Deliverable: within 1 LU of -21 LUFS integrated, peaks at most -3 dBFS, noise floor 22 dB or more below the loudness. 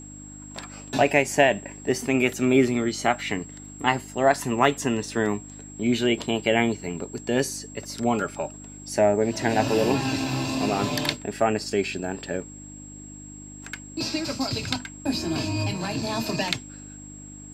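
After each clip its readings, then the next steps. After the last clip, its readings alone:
hum 50 Hz; harmonics up to 300 Hz; hum level -42 dBFS; steady tone 7600 Hz; tone level -43 dBFS; loudness -25.0 LUFS; peak -3.0 dBFS; loudness target -21.0 LUFS
-> de-hum 50 Hz, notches 6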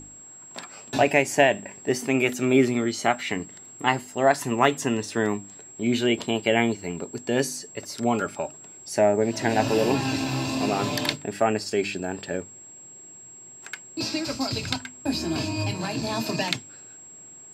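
hum none; steady tone 7600 Hz; tone level -43 dBFS
-> notch 7600 Hz, Q 30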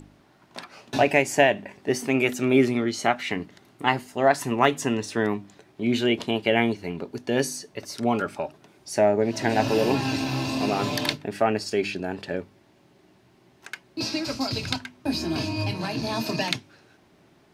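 steady tone none; loudness -25.0 LUFS; peak -3.0 dBFS; loudness target -21.0 LUFS
-> gain +4 dB; limiter -3 dBFS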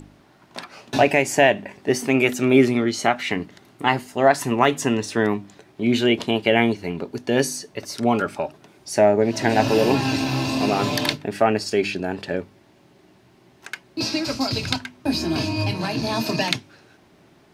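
loudness -21.5 LUFS; peak -3.0 dBFS; noise floor -55 dBFS

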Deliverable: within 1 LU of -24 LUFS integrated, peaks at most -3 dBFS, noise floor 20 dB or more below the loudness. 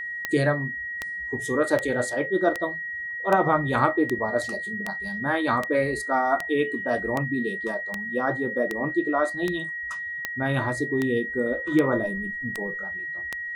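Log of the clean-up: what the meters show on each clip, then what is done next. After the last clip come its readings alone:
clicks 18; steady tone 1900 Hz; tone level -30 dBFS; loudness -25.5 LUFS; peak -6.5 dBFS; loudness target -24.0 LUFS
-> de-click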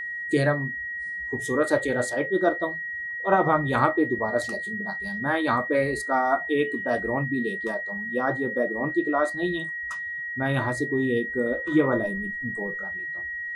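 clicks 0; steady tone 1900 Hz; tone level -30 dBFS
-> notch 1900 Hz, Q 30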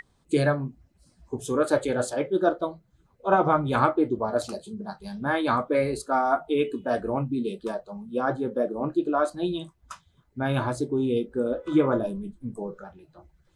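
steady tone none; loudness -26.5 LUFS; peak -7.0 dBFS; loudness target -24.0 LUFS
-> gain +2.5 dB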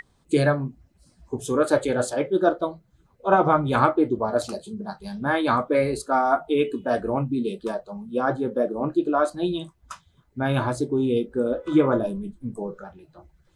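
loudness -24.0 LUFS; peak -4.5 dBFS; noise floor -63 dBFS

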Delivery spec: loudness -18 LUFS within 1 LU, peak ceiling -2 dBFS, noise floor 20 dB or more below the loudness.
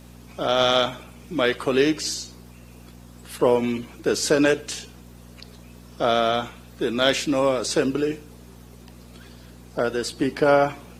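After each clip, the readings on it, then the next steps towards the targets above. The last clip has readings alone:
hum 60 Hz; harmonics up to 240 Hz; hum level -42 dBFS; loudness -22.5 LUFS; peak -4.5 dBFS; loudness target -18.0 LUFS
-> de-hum 60 Hz, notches 4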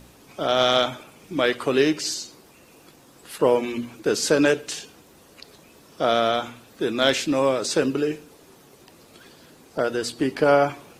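hum none; loudness -22.5 LUFS; peak -4.5 dBFS; loudness target -18.0 LUFS
-> gain +4.5 dB; limiter -2 dBFS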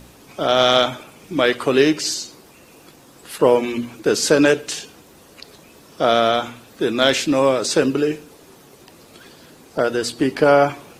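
loudness -18.0 LUFS; peak -2.0 dBFS; noise floor -48 dBFS

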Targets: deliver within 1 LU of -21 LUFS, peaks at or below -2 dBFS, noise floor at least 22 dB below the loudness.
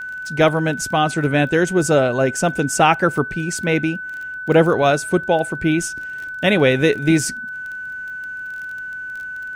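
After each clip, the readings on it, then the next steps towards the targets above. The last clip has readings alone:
ticks 24/s; steady tone 1500 Hz; tone level -27 dBFS; loudness -19.0 LUFS; peak -2.0 dBFS; loudness target -21.0 LUFS
-> de-click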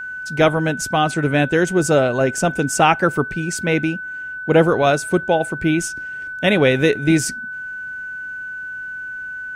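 ticks 0/s; steady tone 1500 Hz; tone level -27 dBFS
-> notch 1500 Hz, Q 30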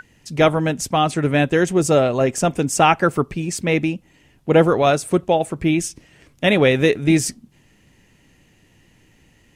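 steady tone none; loudness -18.0 LUFS; peak -2.0 dBFS; loudness target -21.0 LUFS
-> gain -3 dB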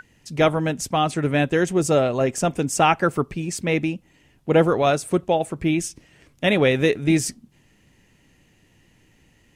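loudness -21.0 LUFS; peak -5.0 dBFS; noise floor -59 dBFS

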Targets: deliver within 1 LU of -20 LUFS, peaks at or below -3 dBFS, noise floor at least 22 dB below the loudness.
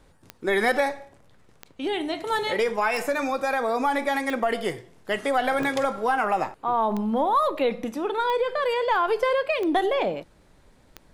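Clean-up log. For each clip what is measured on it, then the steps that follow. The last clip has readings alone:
clicks 9; loudness -25.0 LUFS; peak -10.0 dBFS; loudness target -20.0 LUFS
-> de-click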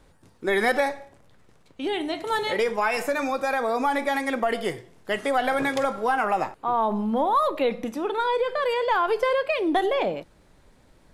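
clicks 0; loudness -25.0 LUFS; peak -10.0 dBFS; loudness target -20.0 LUFS
-> gain +5 dB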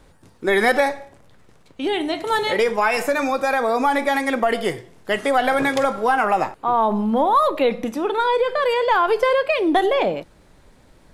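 loudness -20.0 LUFS; peak -5.0 dBFS; noise floor -52 dBFS

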